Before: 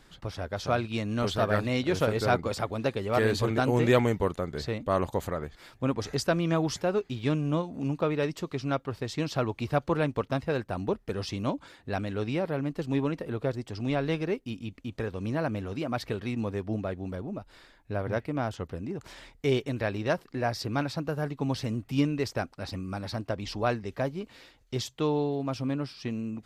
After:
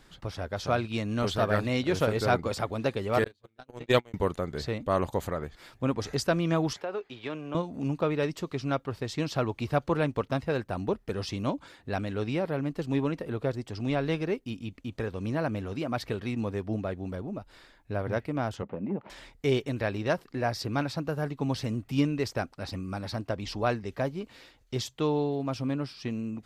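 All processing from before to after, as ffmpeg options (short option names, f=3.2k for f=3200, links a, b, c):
-filter_complex "[0:a]asettb=1/sr,asplit=3[a][b][c];[a]atrim=end=3.244[d];[b]atrim=start=3.24:end=4.14,asetpts=PTS-STARTPTS,afade=t=in:d=0.004:c=qsin,afade=t=out:st=0.896:d=0.004:c=qsin,agate=range=-46dB:threshold=-21dB:ratio=16:release=100:detection=peak,equalizer=f=3.7k:t=o:w=0.97:g=6.5[e];[c]atrim=start=4.136[f];[d][e]acrossfade=d=0.004:c1=hsin:c2=qsin[g];[g][f]acrossfade=d=0.004:c1=qsin:c2=hsin,asettb=1/sr,asplit=3[h][i][j];[h]atrim=end=6.734[k];[i]atrim=start=6.73:end=7.55,asetpts=PTS-STARTPTS,afade=t=in:d=0.004:c=qsin,afade=t=out:st=0.816:d=0.004:c=qsin,acrossover=split=360 4000:gain=0.158 1 0.224[l][m][n];[l][m][n]amix=inputs=3:normalize=0,acompressor=threshold=-29dB:ratio=5:attack=3.2:release=140:knee=1:detection=peak[o];[j]atrim=start=7.546[p];[k][o]acrossfade=d=0.004:c1=hsin:c2=qsin[q];[q][p]acrossfade=d=0.004:c1=qsin:c2=hsin,asettb=1/sr,asplit=3[r][s][t];[r]atrim=end=18.624[u];[s]atrim=start=18.62:end=19.1,asetpts=PTS-STARTPTS,afade=t=in:d=0.004:c=qsin,afade=t=out:st=0.476:d=0.004:c=qsin,asoftclip=type=hard:threshold=-29dB,highpass=170,equalizer=f=200:t=q:w=4:g=10,equalizer=f=570:t=q:w=4:g=8,equalizer=f=850:t=q:w=4:g=7,equalizer=f=1.6k:t=q:w=4:g=-6,lowpass=f=2.5k:w=0.5412,lowpass=f=2.5k:w=1.3066[v];[t]atrim=start=19.096[w];[u][v]acrossfade=d=0.004:c1=hsin:c2=qsin[x];[x][w]acrossfade=d=0.004:c1=qsin:c2=hsin"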